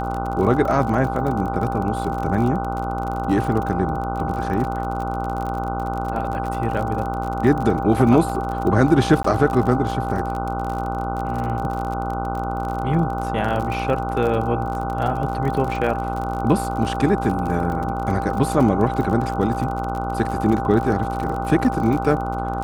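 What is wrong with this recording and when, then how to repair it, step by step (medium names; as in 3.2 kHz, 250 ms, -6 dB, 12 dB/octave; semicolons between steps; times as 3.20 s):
buzz 60 Hz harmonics 25 -27 dBFS
crackle 43 per s -26 dBFS
whine 790 Hz -26 dBFS
9.23–9.24 s: dropout 14 ms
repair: de-click; de-hum 60 Hz, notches 25; band-stop 790 Hz, Q 30; interpolate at 9.23 s, 14 ms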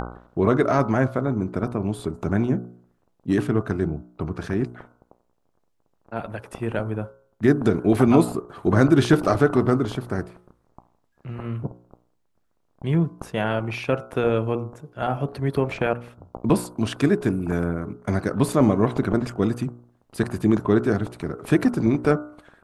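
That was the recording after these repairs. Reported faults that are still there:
nothing left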